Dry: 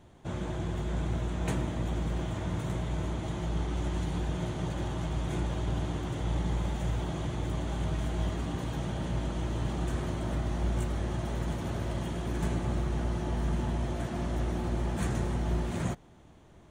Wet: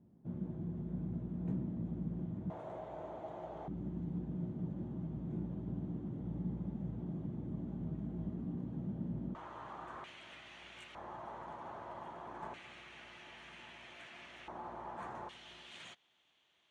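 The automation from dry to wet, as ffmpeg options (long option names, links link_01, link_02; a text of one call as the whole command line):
ffmpeg -i in.wav -af "asetnsamples=nb_out_samples=441:pad=0,asendcmd='2.5 bandpass f 670;3.68 bandpass f 210;9.35 bandpass f 1100;10.04 bandpass f 2600;10.95 bandpass f 960;12.54 bandpass f 2500;14.48 bandpass f 960;15.29 bandpass f 3100',bandpass=frequency=200:width_type=q:width=2.7:csg=0" out.wav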